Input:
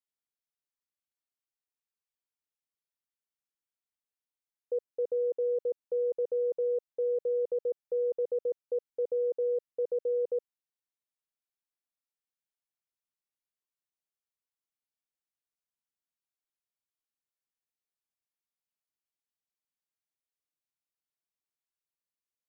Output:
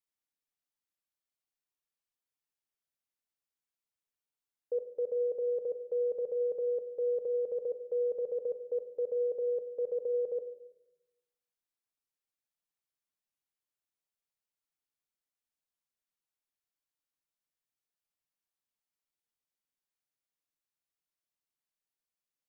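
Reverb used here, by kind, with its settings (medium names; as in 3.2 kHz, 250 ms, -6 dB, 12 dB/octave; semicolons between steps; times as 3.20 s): simulated room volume 310 m³, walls mixed, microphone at 0.41 m; trim -1.5 dB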